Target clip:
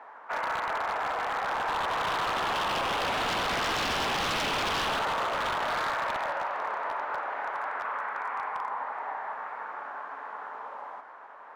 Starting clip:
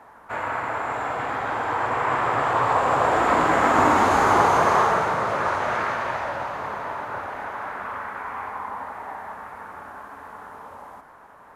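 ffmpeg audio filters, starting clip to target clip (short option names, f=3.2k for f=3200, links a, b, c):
-filter_complex "[0:a]highpass=510,lowpass=3.3k,asplit=2[a][b];[b]acompressor=threshold=-34dB:ratio=6,volume=0dB[c];[a][c]amix=inputs=2:normalize=0,aeval=exprs='0.106*(abs(mod(val(0)/0.106+3,4)-2)-1)':c=same,volume=-4.5dB"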